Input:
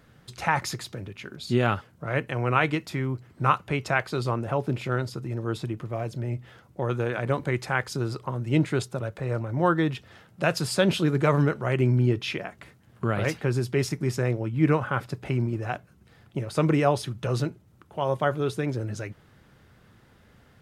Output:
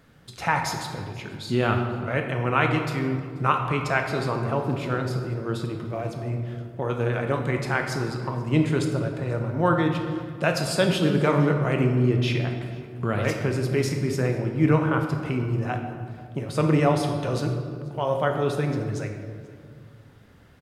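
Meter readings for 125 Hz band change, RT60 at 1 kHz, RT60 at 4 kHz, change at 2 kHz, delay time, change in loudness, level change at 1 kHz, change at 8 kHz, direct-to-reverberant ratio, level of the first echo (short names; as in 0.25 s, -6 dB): +2.0 dB, 1.8 s, 1.3 s, +1.5 dB, 0.485 s, +1.5 dB, +1.5 dB, +1.0 dB, 3.5 dB, -24.0 dB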